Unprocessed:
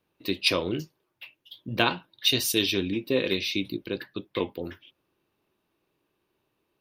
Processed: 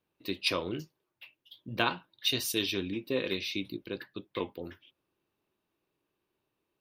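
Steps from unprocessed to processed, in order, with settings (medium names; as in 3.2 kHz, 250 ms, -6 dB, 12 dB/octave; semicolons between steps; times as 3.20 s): dynamic bell 1.2 kHz, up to +4 dB, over -43 dBFS, Q 1.4; trim -6.5 dB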